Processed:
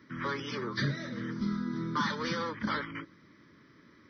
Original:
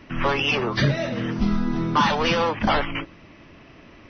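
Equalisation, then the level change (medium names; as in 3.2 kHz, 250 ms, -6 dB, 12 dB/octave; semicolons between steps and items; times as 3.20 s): high-pass 140 Hz 12 dB/octave; static phaser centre 2.7 kHz, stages 6; -7.5 dB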